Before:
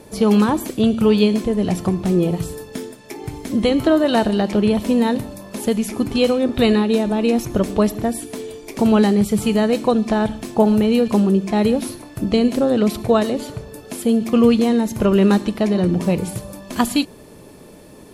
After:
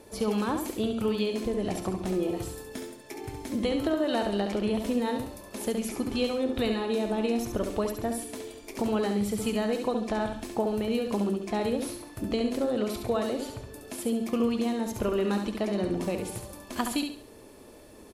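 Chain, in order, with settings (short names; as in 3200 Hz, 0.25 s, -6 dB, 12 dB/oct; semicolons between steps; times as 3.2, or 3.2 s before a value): bell 160 Hz -12.5 dB 0.54 oct; compressor 3:1, threshold -18 dBFS, peak gain reduction 6.5 dB; feedback echo 69 ms, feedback 34%, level -6 dB; gain -7.5 dB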